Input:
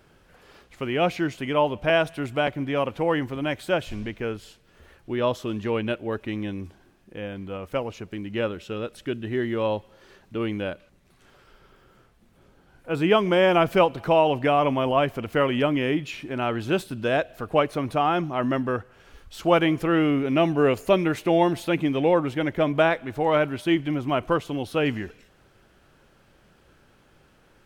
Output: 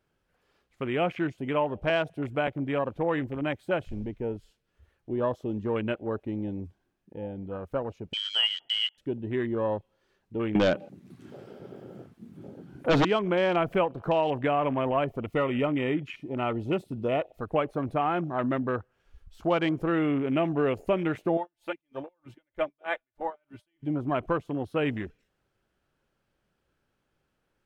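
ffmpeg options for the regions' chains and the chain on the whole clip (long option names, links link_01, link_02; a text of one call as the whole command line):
ffmpeg -i in.wav -filter_complex "[0:a]asettb=1/sr,asplit=3[link_01][link_02][link_03];[link_01]atrim=end=8.134[link_04];[link_02]atrim=start=8.13:end=8.98,asetpts=PTS-STARTPTS,afade=type=in:duration=0.004:curve=qsin,afade=type=out:start_time=0.846:duration=0.004:curve=qsin,equalizer=frequency=480:width_type=o:width=1.5:gain=7,lowpass=frequency=2900:width_type=q:width=0.5098,lowpass=frequency=2900:width_type=q:width=0.6013,lowpass=frequency=2900:width_type=q:width=0.9,lowpass=frequency=2900:width_type=q:width=2.563,afreqshift=-3400,asuperstop=centerf=1100:order=20:qfactor=7.1[link_05];[link_03]atrim=start=8.976[link_06];[link_04][link_05]acrossfade=duration=0.004:curve1=hsin:curve2=qsin[link_07];[link_07][link_06]acrossfade=duration=0.004:curve1=qsin:curve2=hsin,asettb=1/sr,asplit=3[link_08][link_09][link_10];[link_08]atrim=end=10.554[link_11];[link_09]atrim=start=10.55:end=13.05,asetpts=PTS-STARTPTS,afade=type=in:duration=0.004:curve=qsin,afade=type=out:start_time=2.496:duration=0.004:curve=qsin,highpass=200,lowshelf=frequency=260:gain=9,aeval=exprs='0.316*sin(PI/2*3.98*val(0)/0.316)':channel_layout=same[link_12];[link_10]atrim=start=13.046[link_13];[link_11][link_12]acrossfade=duration=0.004:curve1=hsin:curve2=qsin[link_14];[link_14][link_13]acrossfade=duration=0.004:curve1=qsin:curve2=hsin,asettb=1/sr,asplit=3[link_15][link_16][link_17];[link_15]atrim=end=15.044[link_18];[link_16]atrim=start=15.04:end=17.45,asetpts=PTS-STARTPTS,afade=type=in:duration=0.004:curve=qsin,afade=type=out:start_time=2.406:duration=0.004:curve=qsin,asoftclip=type=hard:threshold=-13.5dB,asuperstop=centerf=1600:order=20:qfactor=6.2[link_19];[link_17]atrim=start=17.446[link_20];[link_18][link_19]acrossfade=duration=0.004:curve1=hsin:curve2=qsin[link_21];[link_21][link_20]acrossfade=duration=0.004:curve1=qsin:curve2=hsin,asettb=1/sr,asplit=3[link_22][link_23][link_24];[link_22]atrim=end=21.374[link_25];[link_23]atrim=start=21.37:end=23.83,asetpts=PTS-STARTPTS,afade=type=in:duration=0.004:curve=qsin,afade=type=out:start_time=2.456:duration=0.004:curve=qsin,equalizer=frequency=240:width_type=o:width=1.5:gain=-14.5,aecho=1:1:3.4:0.5,atrim=end_sample=108486,aeval=exprs='val(0)*pow(10,-36*(0.5-0.5*cos(2*PI*3.2*n/s))/20)':channel_layout=same[link_26];[link_24]atrim=start=23.826[link_27];[link_25][link_26]acrossfade=duration=0.004:curve1=hsin:curve2=qsin[link_28];[link_28][link_27]acrossfade=duration=0.004:curve1=qsin:curve2=hsin,afwtdn=0.02,acompressor=threshold=-22dB:ratio=2,volume=-2dB" out.wav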